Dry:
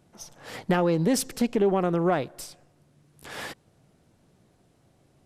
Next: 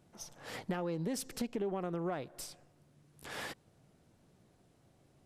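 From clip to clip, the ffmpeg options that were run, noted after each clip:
ffmpeg -i in.wav -af "acompressor=threshold=-33dB:ratio=2.5,volume=-4.5dB" out.wav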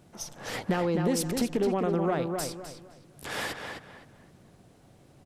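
ffmpeg -i in.wav -filter_complex "[0:a]asplit=2[link_01][link_02];[link_02]adelay=257,lowpass=frequency=3400:poles=1,volume=-5dB,asplit=2[link_03][link_04];[link_04]adelay=257,lowpass=frequency=3400:poles=1,volume=0.3,asplit=2[link_05][link_06];[link_06]adelay=257,lowpass=frequency=3400:poles=1,volume=0.3,asplit=2[link_07][link_08];[link_08]adelay=257,lowpass=frequency=3400:poles=1,volume=0.3[link_09];[link_01][link_03][link_05][link_07][link_09]amix=inputs=5:normalize=0,volume=9dB" out.wav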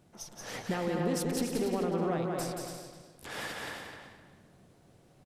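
ffmpeg -i in.wav -af "aecho=1:1:180|288|352.8|391.7|415:0.631|0.398|0.251|0.158|0.1,volume=-6dB" out.wav

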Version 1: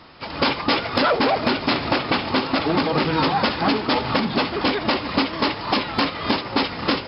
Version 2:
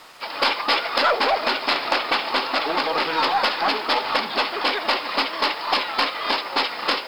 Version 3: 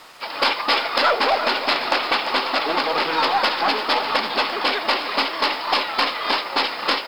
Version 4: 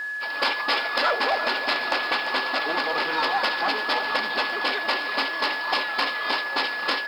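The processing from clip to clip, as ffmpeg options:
ffmpeg -i in.wav -af "highpass=600,acrusher=bits=7:mix=0:aa=0.5,aeval=exprs='0.447*(cos(1*acos(clip(val(0)/0.447,-1,1)))-cos(1*PI/2))+0.0708*(cos(3*acos(clip(val(0)/0.447,-1,1)))-cos(3*PI/2))+0.0316*(cos(5*acos(clip(val(0)/0.447,-1,1)))-cos(5*PI/2))+0.00501*(cos(6*acos(clip(val(0)/0.447,-1,1)))-cos(6*PI/2))':channel_layout=same,volume=3.5dB" out.wav
ffmpeg -i in.wav -af "aecho=1:1:343:0.282,volume=1dB" out.wav
ffmpeg -i in.wav -af "lowshelf=frequency=66:gain=-10,aeval=exprs='val(0)+0.0708*sin(2*PI*1700*n/s)':channel_layout=same,volume=-5dB" out.wav

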